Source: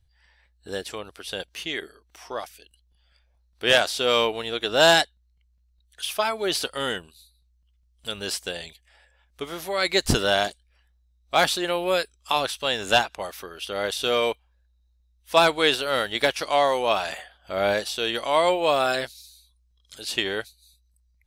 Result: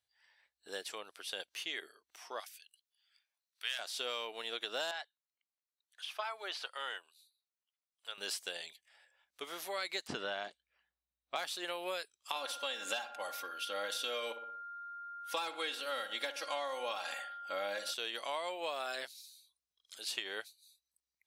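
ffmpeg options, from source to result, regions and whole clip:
-filter_complex "[0:a]asettb=1/sr,asplit=3[a][b][c];[a]atrim=end=2.404[d];[b]atrim=start=2.4:end=3.79,asetpts=PTS-STARTPTS,afade=t=in:d=0.004:c=qsin,afade=t=out:st=1.386:d=0.004:c=qsin,highpass=1.5k,highshelf=f=9k:g=4.5[e];[c]atrim=start=3.786[f];[d][e]acrossfade=d=0.004:c1=hsin:c2=qsin[g];[g][f]acrossfade=d=0.004:c1=qsin:c2=hsin,asettb=1/sr,asplit=3[h][i][j];[h]atrim=end=4.914[k];[i]atrim=start=4.91:end=8.18,asetpts=PTS-STARTPTS,afade=t=in:d=0.004:c=qsin,afade=t=out:st=3.266:d=0.004:c=qsin,acrossover=split=5300[l][m];[m]acompressor=threshold=-47dB:ratio=4:attack=1:release=60[n];[l][n]amix=inputs=2:normalize=0,highpass=1k,tiltshelf=f=1.3k:g=7[o];[j]atrim=start=8.176[p];[k][o]acrossfade=d=0.004:c1=hsin:c2=qsin[q];[q][p]acrossfade=d=0.004:c1=qsin:c2=hsin,asettb=1/sr,asplit=3[r][s][t];[r]atrim=end=10.074[u];[s]atrim=start=10.07:end=11.36,asetpts=PTS-STARTPTS,afade=t=in:d=0.004:c=qsin,afade=t=out:st=1.286:d=0.004:c=qsin,lowpass=f=8.6k:w=0.5412,lowpass=f=8.6k:w=1.3066,bass=f=250:g=8,treble=f=4k:g=-14[v];[t]atrim=start=11.356[w];[u][v]acrossfade=d=0.004:c1=hsin:c2=qsin[x];[x][w]acrossfade=d=0.004:c1=qsin:c2=hsin,asettb=1/sr,asplit=3[y][z][aa];[y]atrim=end=12.354[ab];[z]atrim=start=12.35:end=17.94,asetpts=PTS-STARTPTS,afade=t=in:d=0.004:c=qsin,afade=t=out:st=5.586:d=0.004:c=qsin,aecho=1:1:3.7:0.78,atrim=end_sample=246519,aeval=exprs='val(0)+0.0126*sin(2*PI*1400*n/s)':c=same,asplit=2[ac][ad];[ad]adelay=60,lowpass=f=2.4k:p=1,volume=-13dB,asplit=2[ae][af];[af]adelay=60,lowpass=f=2.4k:p=1,volume=0.51,asplit=2[ag][ah];[ah]adelay=60,lowpass=f=2.4k:p=1,volume=0.51,asplit=2[ai][aj];[aj]adelay=60,lowpass=f=2.4k:p=1,volume=0.51,asplit=2[ak][al];[al]adelay=60,lowpass=f=2.4k:p=1,volume=0.51[am];[ac][ae][ag][ai][ak][am]amix=inputs=6:normalize=0,atrim=end_sample=246519[an];[aa]atrim=start=17.936[ao];[ab][an]acrossfade=d=0.004:c1=hsin:c2=qsin[ap];[ap][ao]acrossfade=d=0.004:c1=qsin:c2=hsin,highpass=240,lowshelf=f=450:g=-12,acompressor=threshold=-28dB:ratio=12,volume=-6.5dB"

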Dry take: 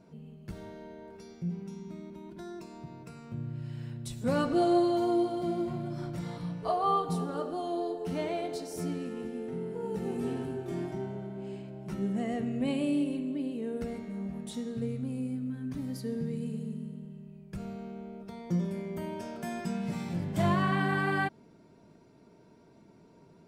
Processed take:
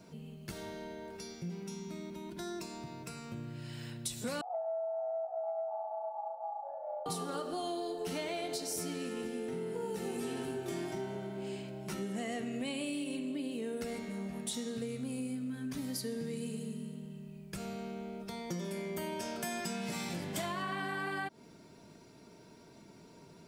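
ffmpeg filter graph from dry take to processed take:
-filter_complex "[0:a]asettb=1/sr,asplit=3[a][b][c];[a]atrim=end=4.414[d];[b]atrim=start=4.41:end=7.06,asetpts=PTS-STARTPTS,afade=t=in:d=0.004:c=qsin,afade=t=out:st=2.646:d=0.004:c=qsin,aeval=exprs='val(0)*sin(2*PI*1000*n/s)':c=same,asuperpass=centerf=710:order=8:qfactor=2.2,aecho=1:1:826:0.376,atrim=end_sample=116865[e];[c]atrim=start=7.056[f];[d][e]acrossfade=d=0.004:c1=hsin:c2=qsin[g];[g][f]acrossfade=d=0.004:c1=qsin:c2=hsin,acrossover=split=230|1200[h][i][j];[h]acompressor=threshold=-48dB:ratio=4[k];[i]acompressor=threshold=-33dB:ratio=4[l];[j]acompressor=threshold=-41dB:ratio=4[m];[k][l][m]amix=inputs=3:normalize=0,highshelf=f=2.2k:g=11.5,acompressor=threshold=-35dB:ratio=6,volume=1dB"

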